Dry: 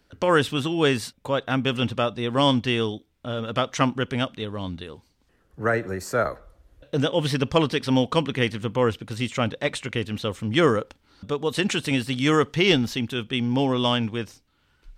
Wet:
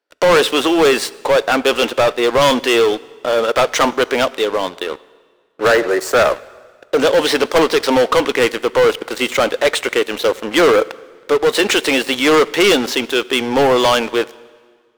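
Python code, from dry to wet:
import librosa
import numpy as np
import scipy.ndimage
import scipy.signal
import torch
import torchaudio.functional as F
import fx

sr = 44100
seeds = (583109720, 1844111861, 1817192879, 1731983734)

y = scipy.signal.sosfilt(scipy.signal.butter(4, 380.0, 'highpass', fs=sr, output='sos'), x)
y = fx.high_shelf(y, sr, hz=2300.0, db=-8.0)
y = fx.leveller(y, sr, passes=5)
y = fx.rev_plate(y, sr, seeds[0], rt60_s=1.7, hf_ratio=0.9, predelay_ms=0, drr_db=19.5)
y = y * 10.0 ** (1.0 / 20.0)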